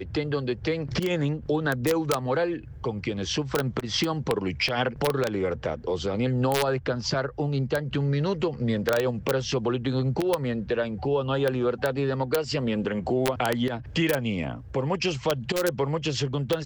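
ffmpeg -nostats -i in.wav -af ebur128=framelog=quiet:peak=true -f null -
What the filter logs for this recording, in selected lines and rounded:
Integrated loudness:
  I:         -26.8 LUFS
  Threshold: -36.8 LUFS
Loudness range:
  LRA:         1.1 LU
  Threshold: -46.7 LUFS
  LRA low:   -27.3 LUFS
  LRA high:  -26.2 LUFS
True peak:
  Peak:      -10.1 dBFS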